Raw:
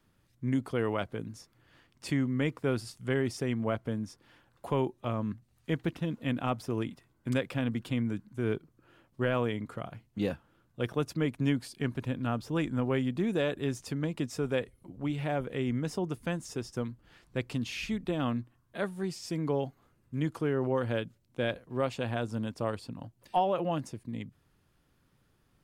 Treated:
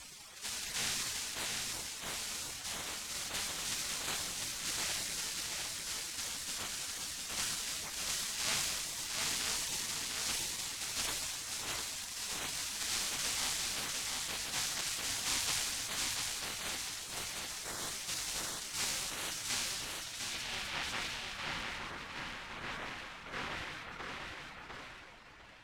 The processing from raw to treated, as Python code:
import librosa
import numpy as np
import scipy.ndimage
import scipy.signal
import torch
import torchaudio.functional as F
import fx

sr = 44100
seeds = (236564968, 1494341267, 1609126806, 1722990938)

y = np.sign(x) * np.sqrt(np.mean(np.square(x)))
y = scipy.signal.sosfilt(scipy.signal.butter(2, 390.0, 'highpass', fs=sr, output='sos'), y)
y = fx.high_shelf(y, sr, hz=3700.0, db=7.5)
y = fx.rider(y, sr, range_db=10, speed_s=0.5)
y = fx.quant_dither(y, sr, seeds[0], bits=6, dither='triangular')
y = fx.vibrato(y, sr, rate_hz=1.2, depth_cents=6.8)
y = y * np.sin(2.0 * np.pi * 110.0 * np.arange(len(y)) / sr)
y = fx.spec_gate(y, sr, threshold_db=-15, keep='weak')
y = fx.filter_sweep_lowpass(y, sr, from_hz=7400.0, to_hz=2000.0, start_s=19.42, end_s=21.25, q=0.94)
y = fx.echo_feedback(y, sr, ms=700, feedback_pct=26, wet_db=-3.0)
y = fx.sustainer(y, sr, db_per_s=22.0)
y = y * 10.0 ** (4.5 / 20.0)